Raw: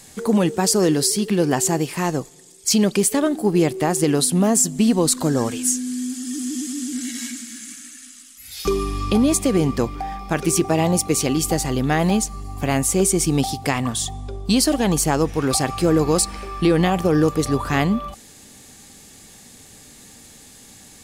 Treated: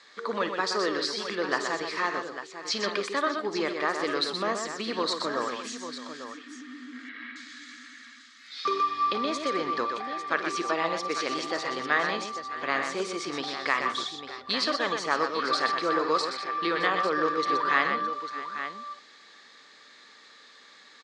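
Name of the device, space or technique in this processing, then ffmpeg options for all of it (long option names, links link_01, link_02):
phone earpiece: -filter_complex "[0:a]highpass=430,equalizer=frequency=770:width_type=q:width=4:gain=-9,equalizer=frequency=1200:width_type=q:width=4:gain=9,equalizer=frequency=1800:width_type=q:width=4:gain=5,equalizer=frequency=2800:width_type=q:width=4:gain=-7,equalizer=frequency=4000:width_type=q:width=4:gain=4,lowpass=frequency=4300:width=0.5412,lowpass=frequency=4300:width=1.3066,asettb=1/sr,asplit=3[link_01][link_02][link_03];[link_01]atrim=end=6.244[link_04];[link_02]atrim=start=6.24:end=7.36,asetpts=PTS-STARTPTS,afade=type=in:duration=0.004:curve=qsin,afade=type=out:start_time=1.116:duration=0.004:curve=qsin,lowpass=frequency=2600:width=0.5412,lowpass=frequency=2600:width=1.3066[link_05];[link_03]atrim=start=7.356[link_06];[link_04][link_05]acrossfade=duration=0.004:curve1=hsin:curve2=qsin[link_07];[link_07][link_06]acrossfade=duration=0.004:curve1=qsin:curve2=hsin,lowshelf=frequency=420:gain=-9.5,aecho=1:1:54|124|616|848:0.2|0.473|0.15|0.299,volume=-2.5dB"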